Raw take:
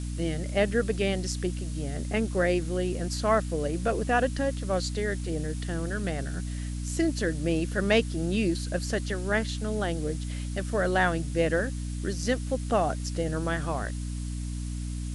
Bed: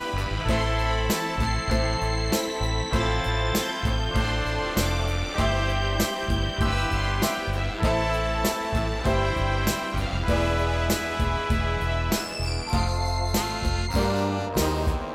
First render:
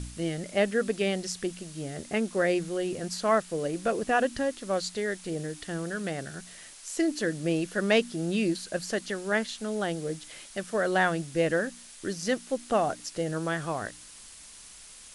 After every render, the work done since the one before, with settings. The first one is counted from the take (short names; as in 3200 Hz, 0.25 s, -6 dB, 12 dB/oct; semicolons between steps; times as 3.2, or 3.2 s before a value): de-hum 60 Hz, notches 5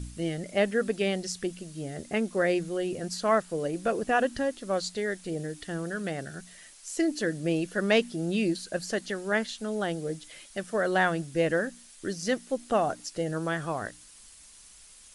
denoiser 6 dB, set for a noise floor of -49 dBFS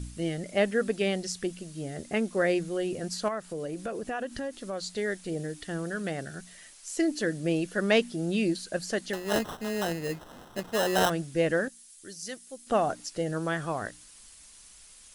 3.28–4.9 compressor 3:1, threshold -32 dBFS; 9.13–11.1 sample-rate reducer 2300 Hz; 11.68–12.67 pre-emphasis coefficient 0.8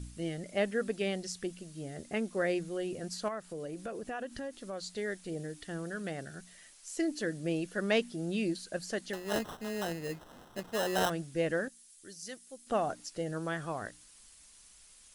gain -5.5 dB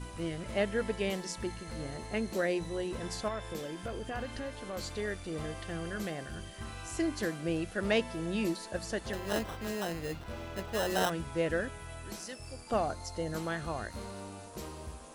add bed -19.5 dB